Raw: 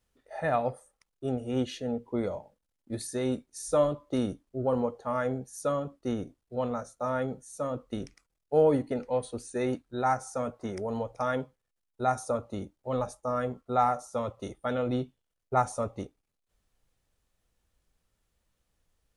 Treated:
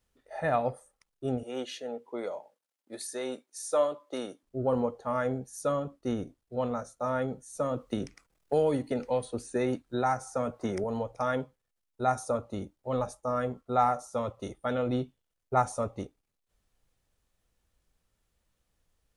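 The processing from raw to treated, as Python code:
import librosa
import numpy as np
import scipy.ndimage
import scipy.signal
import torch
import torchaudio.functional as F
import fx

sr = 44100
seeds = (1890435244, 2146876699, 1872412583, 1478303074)

y = fx.highpass(x, sr, hz=450.0, slope=12, at=(1.43, 4.43))
y = fx.band_squash(y, sr, depth_pct=70, at=(7.55, 10.84))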